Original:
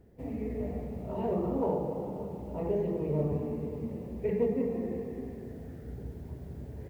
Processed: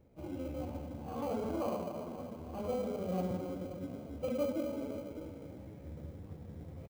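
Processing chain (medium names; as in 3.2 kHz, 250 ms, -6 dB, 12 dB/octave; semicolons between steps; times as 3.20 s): pitch shift +3.5 st; in parallel at -11.5 dB: sample-rate reducer 1.8 kHz, jitter 0%; on the sum: trim -7 dB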